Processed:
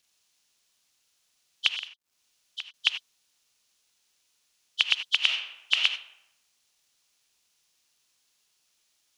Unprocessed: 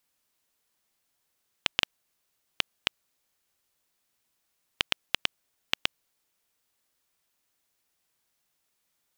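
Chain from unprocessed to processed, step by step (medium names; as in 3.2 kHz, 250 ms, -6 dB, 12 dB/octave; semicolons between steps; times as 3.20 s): knee-point frequency compression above 3 kHz 1.5:1; high-pass 890 Hz 12 dB/octave; high-order bell 4.1 kHz +9.5 dB; 1.71–2.74 s: compression 3:1, threshold -38 dBFS, peak gain reduction 16.5 dB; 5.18–5.84 s: reverb throw, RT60 0.92 s, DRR 2.5 dB; word length cut 12-bit, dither none; gated-style reverb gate 110 ms rising, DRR 10.5 dB; trim -1 dB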